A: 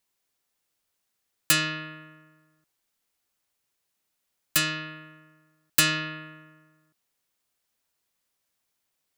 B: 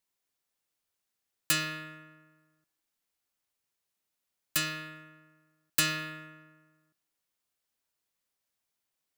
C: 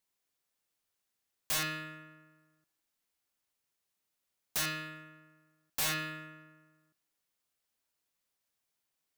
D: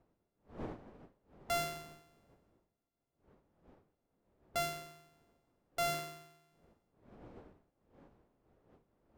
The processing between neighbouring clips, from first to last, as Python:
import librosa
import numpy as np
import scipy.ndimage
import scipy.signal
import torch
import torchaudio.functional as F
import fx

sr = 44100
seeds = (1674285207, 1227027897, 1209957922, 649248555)

y1 = fx.rev_plate(x, sr, seeds[0], rt60_s=0.82, hf_ratio=0.95, predelay_ms=0, drr_db=16.5)
y1 = F.gain(torch.from_numpy(y1), -6.0).numpy()
y2 = (np.mod(10.0 ** (26.0 / 20.0) * y1 + 1.0, 2.0) - 1.0) / 10.0 ** (26.0 / 20.0)
y3 = np.r_[np.sort(y2[:len(y2) // 64 * 64].reshape(-1, 64), axis=1).ravel(), y2[len(y2) // 64 * 64:]]
y3 = fx.dmg_wind(y3, sr, seeds[1], corner_hz=490.0, level_db=-51.0)
y3 = fx.upward_expand(y3, sr, threshold_db=-55.0, expansion=1.5)
y3 = F.gain(torch.from_numpy(y3), -1.5).numpy()